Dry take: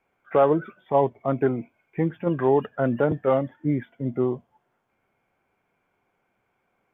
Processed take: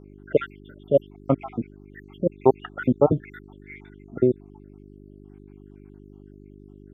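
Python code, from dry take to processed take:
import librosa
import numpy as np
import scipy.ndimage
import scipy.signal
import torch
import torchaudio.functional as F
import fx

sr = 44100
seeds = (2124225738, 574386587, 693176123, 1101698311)

y = fx.spec_dropout(x, sr, seeds[0], share_pct=75)
y = fx.dmg_buzz(y, sr, base_hz=50.0, harmonics=8, level_db=-53.0, tilt_db=-1, odd_only=False)
y = F.gain(torch.from_numpy(y), 6.0).numpy()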